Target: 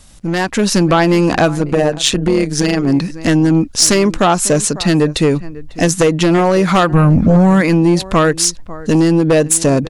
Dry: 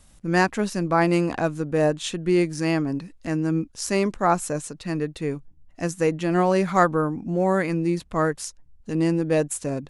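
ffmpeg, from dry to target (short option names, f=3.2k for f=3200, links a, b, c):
-filter_complex "[0:a]acompressor=threshold=-24dB:ratio=10,asplit=2[a][b];[b]adelay=548.1,volume=-20dB,highshelf=f=4k:g=-12.3[c];[a][c]amix=inputs=2:normalize=0,asplit=3[d][e][f];[d]afade=t=out:st=1.55:d=0.02[g];[e]tremolo=f=140:d=0.788,afade=t=in:st=1.55:d=0.02,afade=t=out:st=2.86:d=0.02[h];[f]afade=t=in:st=2.86:d=0.02[i];[g][h][i]amix=inputs=3:normalize=0,asplit=3[j][k][l];[j]afade=t=out:st=6.92:d=0.02[m];[k]asubboost=boost=8:cutoff=140,afade=t=in:st=6.92:d=0.02,afade=t=out:st=7.6:d=0.02[n];[l]afade=t=in:st=7.6:d=0.02[o];[m][n][o]amix=inputs=3:normalize=0,aeval=exprs='0.237*sin(PI/2*2.51*val(0)/0.237)':c=same,dynaudnorm=f=100:g=9:m=10dB,equalizer=f=4.7k:t=o:w=1.3:g=4.5,volume=-2dB"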